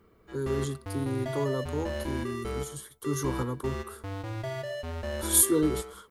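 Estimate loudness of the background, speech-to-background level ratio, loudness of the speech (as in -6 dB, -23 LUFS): -36.5 LUFS, 7.0 dB, -29.5 LUFS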